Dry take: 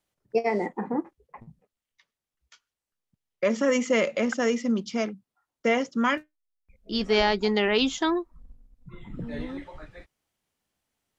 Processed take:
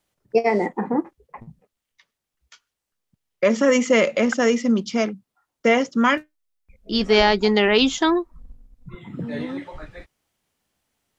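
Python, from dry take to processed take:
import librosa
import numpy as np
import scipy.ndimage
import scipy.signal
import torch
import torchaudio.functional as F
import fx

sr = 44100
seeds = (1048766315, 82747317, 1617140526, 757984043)

y = fx.highpass(x, sr, hz=110.0, slope=24, at=(8.95, 9.72))
y = y * 10.0 ** (6.0 / 20.0)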